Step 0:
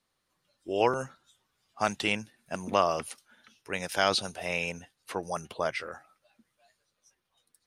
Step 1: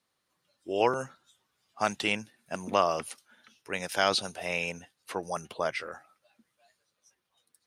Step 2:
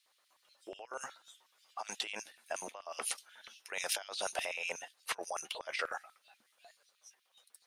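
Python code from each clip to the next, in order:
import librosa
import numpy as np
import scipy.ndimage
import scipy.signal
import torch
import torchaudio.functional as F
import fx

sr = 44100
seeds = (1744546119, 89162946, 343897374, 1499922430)

y1 = fx.highpass(x, sr, hz=110.0, slope=6)
y2 = fx.over_compress(y1, sr, threshold_db=-38.0, ratio=-1.0)
y2 = fx.filter_lfo_highpass(y2, sr, shape='square', hz=8.2, low_hz=660.0, high_hz=2800.0, q=1.3)
y2 = F.gain(torch.from_numpy(y2), -1.0).numpy()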